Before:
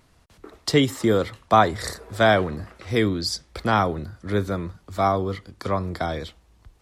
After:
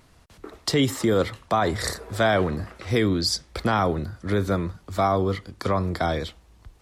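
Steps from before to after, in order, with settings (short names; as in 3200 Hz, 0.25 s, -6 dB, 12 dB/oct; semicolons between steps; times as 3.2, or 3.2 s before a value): limiter -15 dBFS, peak gain reduction 11.5 dB; gain +3 dB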